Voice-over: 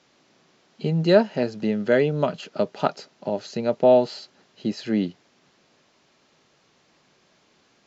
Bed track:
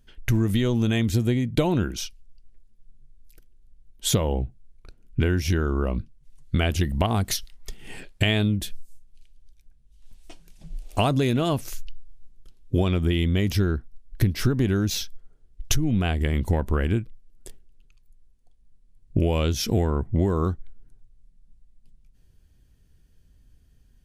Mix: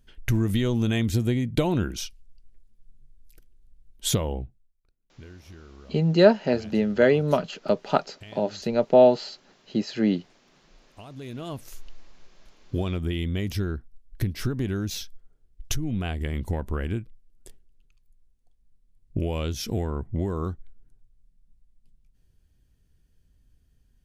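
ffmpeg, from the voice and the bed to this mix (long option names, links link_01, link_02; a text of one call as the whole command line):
ffmpeg -i stem1.wav -i stem2.wav -filter_complex "[0:a]adelay=5100,volume=0.5dB[link_01];[1:a]volume=16.5dB,afade=type=out:start_time=4.09:duration=0.63:silence=0.0794328,afade=type=in:start_time=11.06:duration=0.98:silence=0.125893[link_02];[link_01][link_02]amix=inputs=2:normalize=0" out.wav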